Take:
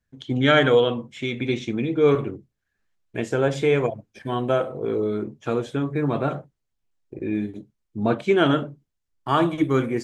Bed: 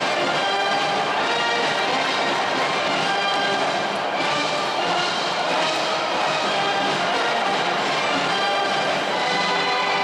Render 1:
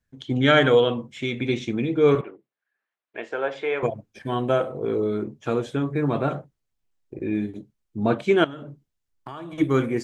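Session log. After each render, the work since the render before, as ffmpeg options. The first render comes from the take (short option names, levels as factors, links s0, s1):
-filter_complex "[0:a]asettb=1/sr,asplit=3[s0][s1][s2];[s0]atrim=end=2.214[s3];[s1]atrim=start=2.21:end=3.83,asetpts=PTS-STARTPTS,afade=t=in:d=0.004:c=qsin,afade=t=out:st=1.616:d=0.004:c=qsin,highpass=590,lowpass=2600[s4];[s2]atrim=start=3.826[s5];[s3][s4]acrossfade=d=0.004:c1=hsin:c2=qsin[s6];[s6][s5]acrossfade=d=0.004:c1=qsin:c2=hsin,asettb=1/sr,asplit=3[s7][s8][s9];[s7]atrim=end=8.444[s10];[s8]atrim=start=8.44:end=9.58,asetpts=PTS-STARTPTS,afade=t=in:d=0.004:c=qsin,afade=t=out:st=1.136:d=0.004:c=qsin,acompressor=threshold=0.0251:ratio=16:attack=3.2:release=140:knee=1:detection=peak[s11];[s9]atrim=start=9.576[s12];[s10][s11]acrossfade=d=0.004:c1=hsin:c2=qsin[s13];[s13][s12]acrossfade=d=0.004:c1=qsin:c2=hsin"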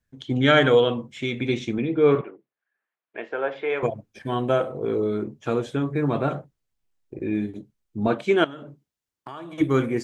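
-filter_complex "[0:a]asettb=1/sr,asplit=3[s0][s1][s2];[s0]atrim=end=1.784[s3];[s1]atrim=start=1.78:end=3.7,asetpts=PTS-STARTPTS,afade=t=in:d=0.004:c=qsin,afade=t=out:st=1.916:d=0.004:c=qsin,highpass=120,lowpass=3100[s4];[s2]atrim=start=3.696[s5];[s3][s4]acrossfade=d=0.004:c1=hsin:c2=qsin[s6];[s6][s5]acrossfade=d=0.004:c1=qsin:c2=hsin,asettb=1/sr,asplit=3[s7][s8][s9];[s7]atrim=end=8.074[s10];[s8]atrim=start=8.07:end=9.61,asetpts=PTS-STARTPTS,afade=t=in:d=0.004:c=qsin,afade=t=out:st=1.536:d=0.004:c=qsin,highpass=f=190:p=1[s11];[s9]atrim=start=9.606[s12];[s10][s11]acrossfade=d=0.004:c1=hsin:c2=qsin[s13];[s13][s12]acrossfade=d=0.004:c1=qsin:c2=hsin"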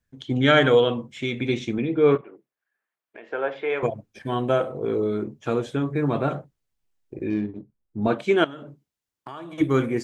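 -filter_complex "[0:a]asplit=3[s0][s1][s2];[s0]afade=t=out:st=2.16:d=0.02[s3];[s1]acompressor=threshold=0.0112:ratio=4:attack=3.2:release=140:knee=1:detection=peak,afade=t=in:st=2.16:d=0.02,afade=t=out:st=3.3:d=0.02[s4];[s2]afade=t=in:st=3.3:d=0.02[s5];[s3][s4][s5]amix=inputs=3:normalize=0,asettb=1/sr,asplit=3[s6][s7][s8];[s6]atrim=end=7.304[s9];[s7]atrim=start=7.3:end=8.03,asetpts=PTS-STARTPTS,afade=t=in:d=0.004:c=qsin,afade=t=out:st=0.726:d=0.004:c=qsin,adynamicsmooth=sensitivity=4:basefreq=1300[s10];[s8]atrim=start=8.026[s11];[s9][s10]acrossfade=d=0.004:c1=hsin:c2=qsin[s12];[s12][s11]acrossfade=d=0.004:c1=qsin:c2=hsin"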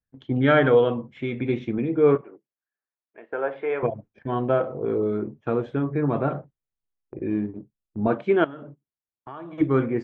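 -af "agate=range=0.282:threshold=0.00708:ratio=16:detection=peak,lowpass=1800"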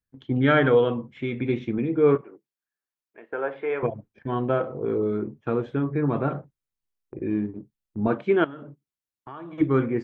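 -af "equalizer=f=650:w=2.3:g=-4"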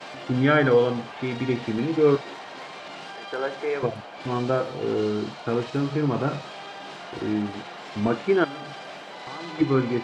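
-filter_complex "[1:a]volume=0.133[s0];[0:a][s0]amix=inputs=2:normalize=0"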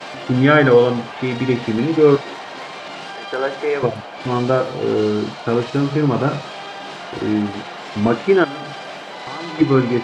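-af "volume=2.24,alimiter=limit=0.794:level=0:latency=1"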